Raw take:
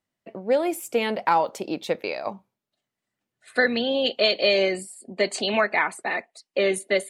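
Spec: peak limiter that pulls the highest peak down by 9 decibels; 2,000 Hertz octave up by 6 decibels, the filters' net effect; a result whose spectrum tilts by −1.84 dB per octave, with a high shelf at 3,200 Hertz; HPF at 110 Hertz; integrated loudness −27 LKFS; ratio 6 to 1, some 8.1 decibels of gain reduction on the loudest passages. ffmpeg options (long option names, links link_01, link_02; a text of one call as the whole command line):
ffmpeg -i in.wav -af "highpass=110,equalizer=frequency=2000:width_type=o:gain=5.5,highshelf=frequency=3200:gain=5,acompressor=threshold=-20dB:ratio=6,volume=1dB,alimiter=limit=-15.5dB:level=0:latency=1" out.wav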